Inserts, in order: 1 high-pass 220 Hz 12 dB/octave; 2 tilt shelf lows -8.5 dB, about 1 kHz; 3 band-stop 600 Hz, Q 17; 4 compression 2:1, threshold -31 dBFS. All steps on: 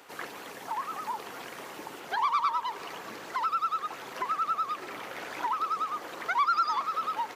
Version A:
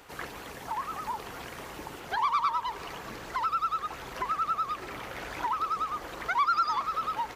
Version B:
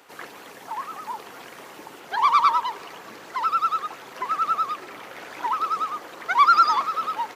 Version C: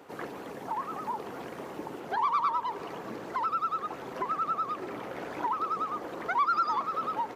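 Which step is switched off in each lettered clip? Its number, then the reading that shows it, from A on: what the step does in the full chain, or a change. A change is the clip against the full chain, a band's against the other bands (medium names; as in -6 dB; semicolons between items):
1, 250 Hz band +1.5 dB; 4, mean gain reduction 3.0 dB; 2, momentary loudness spread change -1 LU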